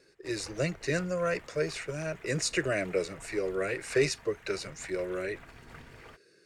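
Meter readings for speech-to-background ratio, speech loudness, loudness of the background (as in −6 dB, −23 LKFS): 19.5 dB, −32.0 LKFS, −51.5 LKFS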